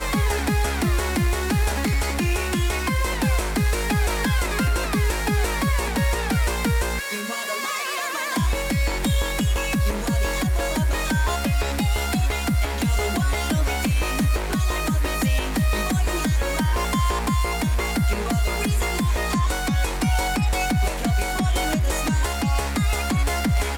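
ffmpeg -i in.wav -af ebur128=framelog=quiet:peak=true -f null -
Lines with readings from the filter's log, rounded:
Integrated loudness:
  I:         -23.1 LUFS
  Threshold: -33.1 LUFS
Loudness range:
  LRA:         1.1 LU
  Threshold: -43.1 LUFS
  LRA low:   -23.8 LUFS
  LRA high:  -22.8 LUFS
True peak:
  Peak:      -13.6 dBFS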